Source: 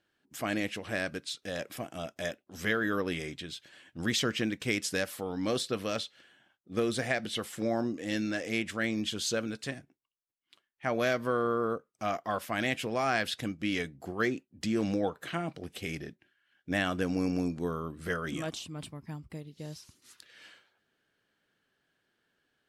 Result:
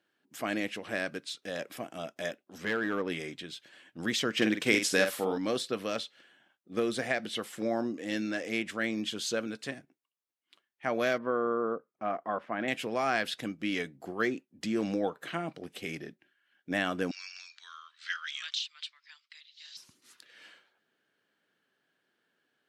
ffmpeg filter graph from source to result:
ffmpeg -i in.wav -filter_complex "[0:a]asettb=1/sr,asplit=3[link_01][link_02][link_03];[link_01]atrim=end=2.584[link_04];[link_02]atrim=start=2.58:end=3.1,asetpts=PTS-STARTPTS,afade=type=in:duration=0.004:curve=qsin,afade=type=out:start_time=0.516:duration=0.004:curve=qsin,aemphasis=mode=reproduction:type=50kf,asoftclip=type=hard:threshold=-24dB[link_05];[link_03]atrim=start=3.096[link_06];[link_04][link_05]acrossfade=duration=0.004:curve1=hsin:curve2=qsin[link_07];[link_07][link_06]acrossfade=duration=0.004:curve1=qsin:curve2=hsin,asettb=1/sr,asplit=3[link_08][link_09][link_10];[link_08]atrim=end=4.374[link_11];[link_09]atrim=start=4.37:end=5.38,asetpts=PTS-STARTPTS,afade=type=in:duration=0.004:curve=qsin,afade=type=out:start_time=1.006:duration=0.004:curve=qsin,lowshelf=frequency=120:gain=-6.5,acontrast=46,asplit=2[link_12][link_13];[link_13]adelay=47,volume=-7dB[link_14];[link_12][link_14]amix=inputs=2:normalize=0,atrim=end_sample=44541[link_15];[link_10]atrim=start=5.376[link_16];[link_11][link_15]acrossfade=duration=0.004:curve1=hsin:curve2=qsin[link_17];[link_17][link_16]acrossfade=duration=0.004:curve1=qsin:curve2=hsin,asettb=1/sr,asplit=3[link_18][link_19][link_20];[link_18]atrim=end=11.184[link_21];[link_19]atrim=start=11.18:end=12.68,asetpts=PTS-STARTPTS,afade=type=in:duration=0.004:curve=qsin,afade=type=out:start_time=1.496:duration=0.004:curve=qsin,lowpass=1600,equalizer=frequency=110:width_type=o:width=0.62:gain=-5[link_22];[link_20]atrim=start=12.676[link_23];[link_21][link_22]acrossfade=duration=0.004:curve1=hsin:curve2=qsin[link_24];[link_24][link_23]acrossfade=duration=0.004:curve1=qsin:curve2=hsin,asettb=1/sr,asplit=3[link_25][link_26][link_27];[link_25]atrim=end=17.114[link_28];[link_26]atrim=start=17.11:end=19.77,asetpts=PTS-STARTPTS,afade=type=in:duration=0.004:curve=qsin,afade=type=out:start_time=2.656:duration=0.004:curve=qsin,asuperpass=centerf=3300:order=8:qfactor=0.59,equalizer=frequency=3900:width_type=o:width=0.95:gain=12.5[link_29];[link_27]atrim=start=19.766[link_30];[link_28][link_29]acrossfade=duration=0.004:curve1=hsin:curve2=qsin[link_31];[link_31][link_30]acrossfade=duration=0.004:curve1=qsin:curve2=hsin,highpass=180,bass=frequency=250:gain=0,treble=frequency=4000:gain=-3" out.wav

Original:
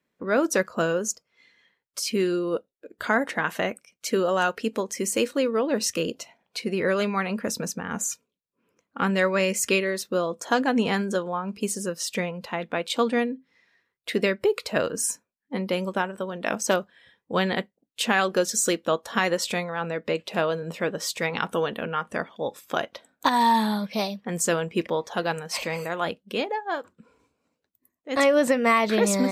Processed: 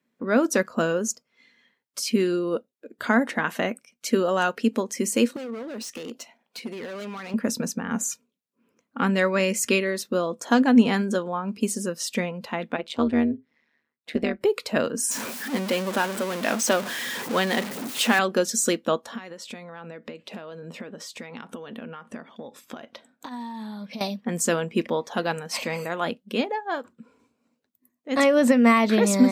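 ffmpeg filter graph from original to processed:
ffmpeg -i in.wav -filter_complex "[0:a]asettb=1/sr,asplit=3[link_01][link_02][link_03];[link_01]atrim=end=5.364[link_04];[link_02]atrim=start=5.36:end=7.34,asetpts=PTS-STARTPTS,afade=type=in:duration=0.004:curve=qsin,afade=type=out:start_time=1.976:duration=0.004:curve=qsin,highpass=frequency=330:poles=1,acompressor=threshold=-31dB:ratio=3:attack=3.2:release=140:knee=1:detection=peak,volume=33dB,asoftclip=hard,volume=-33dB[link_05];[link_03]atrim=start=7.336[link_06];[link_04][link_05]acrossfade=duration=0.004:curve1=hsin:curve2=qsin[link_07];[link_07][link_06]acrossfade=duration=0.004:curve1=qsin:curve2=hsin,asettb=1/sr,asplit=3[link_08][link_09][link_10];[link_08]atrim=end=12.764[link_11];[link_09]atrim=start=12.76:end=14.41,asetpts=PTS-STARTPTS,afade=type=in:duration=0.004:curve=qsin,afade=type=out:start_time=1.646:duration=0.004:curve=qsin,lowpass=frequency=3000:poles=1,tremolo=f=150:d=0.889[link_12];[link_10]atrim=start=14.406[link_13];[link_11][link_12]acrossfade=duration=0.004:curve1=hsin:curve2=qsin[link_14];[link_14][link_13]acrossfade=duration=0.004:curve1=qsin:curve2=hsin,asettb=1/sr,asplit=3[link_15][link_16][link_17];[link_15]atrim=end=15.114[link_18];[link_16]atrim=start=15.11:end=18.19,asetpts=PTS-STARTPTS,afade=type=in:duration=0.004:curve=qsin,afade=type=out:start_time=3.076:duration=0.004:curve=qsin,aeval=exprs='val(0)+0.5*0.0562*sgn(val(0))':channel_layout=same,highpass=frequency=380:poles=1[link_19];[link_17]atrim=start=18.186[link_20];[link_18][link_19]acrossfade=duration=0.004:curve1=hsin:curve2=qsin[link_21];[link_21][link_20]acrossfade=duration=0.004:curve1=qsin:curve2=hsin,asettb=1/sr,asplit=3[link_22][link_23][link_24];[link_22]atrim=end=19.054[link_25];[link_23]atrim=start=19.05:end=24.01,asetpts=PTS-STARTPTS,afade=type=in:duration=0.004:curve=qsin,afade=type=out:start_time=4.956:duration=0.004:curve=qsin,highshelf=frequency=12000:gain=-10.5,acompressor=threshold=-35dB:ratio=16:attack=3.2:release=140:knee=1:detection=peak[link_26];[link_24]atrim=start=24.006[link_27];[link_25][link_26]acrossfade=duration=0.004:curve1=hsin:curve2=qsin[link_28];[link_28][link_27]acrossfade=duration=0.004:curve1=qsin:curve2=hsin,highpass=94,equalizer=frequency=240:width=5.4:gain=11.5" out.wav

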